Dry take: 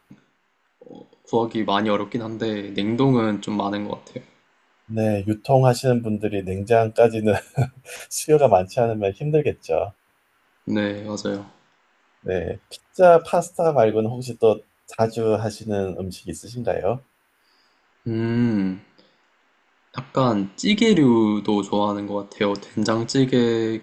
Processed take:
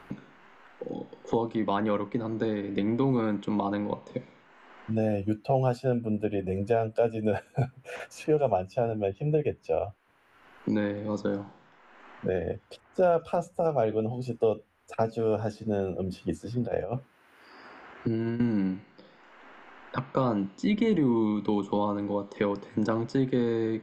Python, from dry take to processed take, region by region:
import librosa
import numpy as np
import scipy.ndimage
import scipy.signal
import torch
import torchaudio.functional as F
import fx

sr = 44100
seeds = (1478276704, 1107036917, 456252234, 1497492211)

y = fx.chain(x, sr, fx.highpass(hz=49.0, slope=12),
    fx.peak_eq(hz=950.0, db=-2.0, octaves=0.35),
    fx.over_compress(threshold_db=-25.0, ratio=-0.5), at=(16.12, 18.4))
y = fx.lowpass(y, sr, hz=1800.0, slope=6)
y = fx.band_squash(y, sr, depth_pct=70)
y = y * librosa.db_to_amplitude(-6.5)